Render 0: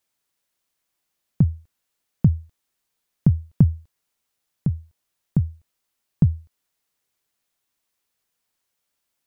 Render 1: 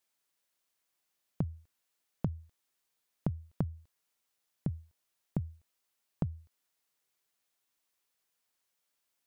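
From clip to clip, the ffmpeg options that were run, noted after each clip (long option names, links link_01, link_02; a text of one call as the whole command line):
ffmpeg -i in.wav -af "lowshelf=frequency=210:gain=-7.5,acompressor=threshold=-25dB:ratio=12,volume=-3.5dB" out.wav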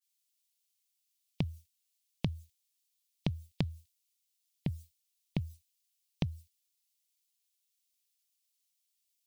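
ffmpeg -i in.wav -af "aexciter=amount=9.3:drive=9.5:freq=2100,agate=range=-33dB:threshold=-43dB:ratio=3:detection=peak,afftdn=noise_reduction=15:noise_floor=-55" out.wav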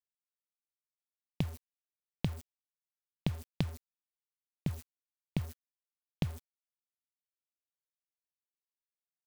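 ffmpeg -i in.wav -af "acrusher=bits=7:mix=0:aa=0.000001" out.wav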